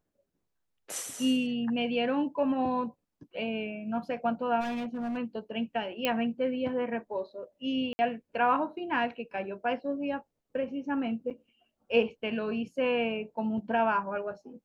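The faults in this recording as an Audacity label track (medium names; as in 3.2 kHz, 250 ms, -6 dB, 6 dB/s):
4.600000	5.180000	clipped -30.5 dBFS
6.050000	6.050000	pop -13 dBFS
7.930000	7.990000	dropout 60 ms
11.300000	11.310000	dropout 7.2 ms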